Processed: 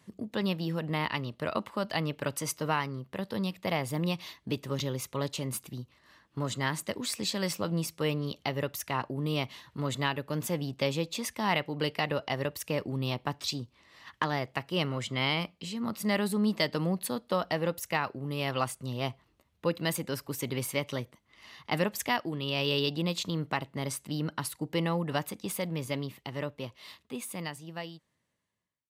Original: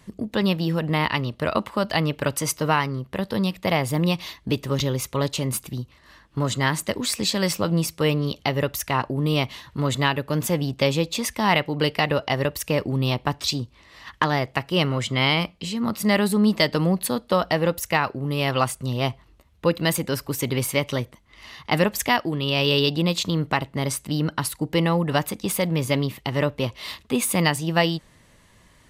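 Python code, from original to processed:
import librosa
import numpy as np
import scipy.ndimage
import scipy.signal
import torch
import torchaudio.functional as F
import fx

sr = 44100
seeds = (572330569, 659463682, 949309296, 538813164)

y = fx.fade_out_tail(x, sr, length_s=3.92)
y = scipy.signal.sosfilt(scipy.signal.butter(2, 100.0, 'highpass', fs=sr, output='sos'), y)
y = y * 10.0 ** (-8.5 / 20.0)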